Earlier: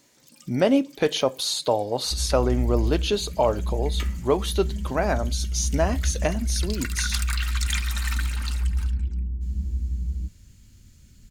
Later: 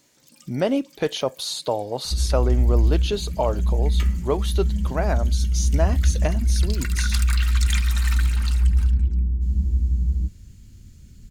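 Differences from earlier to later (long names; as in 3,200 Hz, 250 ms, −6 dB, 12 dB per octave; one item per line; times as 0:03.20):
second sound +6.5 dB
reverb: off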